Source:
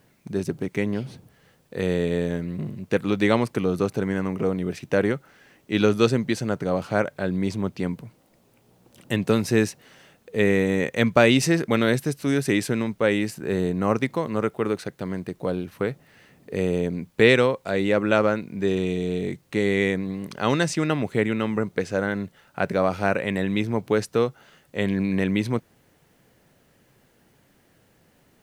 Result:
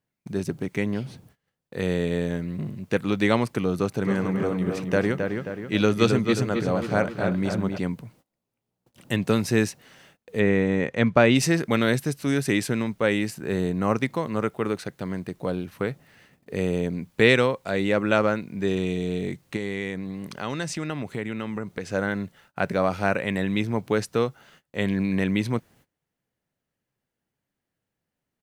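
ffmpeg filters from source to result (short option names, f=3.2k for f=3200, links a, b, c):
-filter_complex "[0:a]asplit=3[a][b][c];[a]afade=t=out:st=4.03:d=0.02[d];[b]asplit=2[e][f];[f]adelay=267,lowpass=f=3.4k:p=1,volume=-5dB,asplit=2[g][h];[h]adelay=267,lowpass=f=3.4k:p=1,volume=0.52,asplit=2[i][j];[j]adelay=267,lowpass=f=3.4k:p=1,volume=0.52,asplit=2[k][l];[l]adelay=267,lowpass=f=3.4k:p=1,volume=0.52,asplit=2[m][n];[n]adelay=267,lowpass=f=3.4k:p=1,volume=0.52,asplit=2[o][p];[p]adelay=267,lowpass=f=3.4k:p=1,volume=0.52,asplit=2[q][r];[r]adelay=267,lowpass=f=3.4k:p=1,volume=0.52[s];[e][g][i][k][m][o][q][s]amix=inputs=8:normalize=0,afade=t=in:st=4.03:d=0.02,afade=t=out:st=7.77:d=0.02[t];[c]afade=t=in:st=7.77:d=0.02[u];[d][t][u]amix=inputs=3:normalize=0,asplit=3[v][w][x];[v]afade=t=out:st=10.39:d=0.02[y];[w]aemphasis=mode=reproduction:type=75fm,afade=t=in:st=10.39:d=0.02,afade=t=out:st=11.34:d=0.02[z];[x]afade=t=in:st=11.34:d=0.02[aa];[y][z][aa]amix=inputs=3:normalize=0,asettb=1/sr,asplit=3[ab][ac][ad];[ab]atrim=end=19.564[ae];[ac]atrim=start=19.56:end=21.92,asetpts=PTS-STARTPTS,afade=t=in:d=0.004:c=qsin,afade=t=out:st=2.356:d=0.004:c=qsin,acompressor=threshold=-29dB:ratio=2:attack=3.2:release=140:knee=1:detection=peak[af];[ad]atrim=start=21.916[ag];[ae][af]acrossfade=d=0.004:c1=hsin:c2=qsin[ah];[ah][ag]acrossfade=d=0.004:c1=qsin:c2=hsin,agate=range=-23dB:threshold=-53dB:ratio=16:detection=peak,equalizer=f=420:w=1.2:g=-2.5"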